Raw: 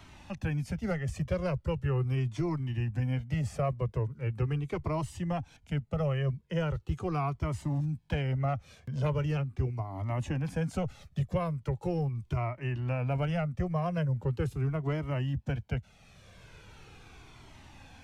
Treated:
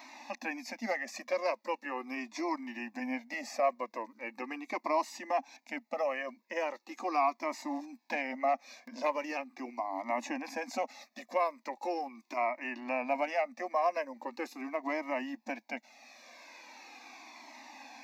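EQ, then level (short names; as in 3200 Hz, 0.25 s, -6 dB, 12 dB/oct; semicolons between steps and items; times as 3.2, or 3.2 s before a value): brick-wall FIR high-pass 230 Hz; fixed phaser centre 2100 Hz, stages 8; +8.0 dB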